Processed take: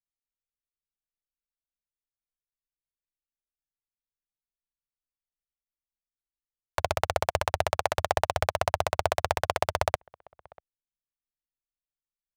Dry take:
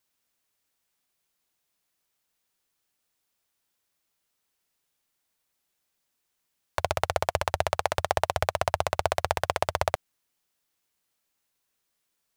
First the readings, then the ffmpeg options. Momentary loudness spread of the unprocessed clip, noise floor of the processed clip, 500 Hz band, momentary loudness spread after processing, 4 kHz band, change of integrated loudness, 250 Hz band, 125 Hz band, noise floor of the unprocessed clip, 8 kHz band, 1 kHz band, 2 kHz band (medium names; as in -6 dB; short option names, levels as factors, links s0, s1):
3 LU, under -85 dBFS, 0.0 dB, 3 LU, 0.0 dB, 0.0 dB, 0.0 dB, 0.0 dB, -79 dBFS, 0.0 dB, 0.0 dB, 0.0 dB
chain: -filter_complex "[0:a]asplit=2[s0][s1];[s1]adelay=641.4,volume=0.0562,highshelf=f=4000:g=-14.4[s2];[s0][s2]amix=inputs=2:normalize=0,anlmdn=0.0631"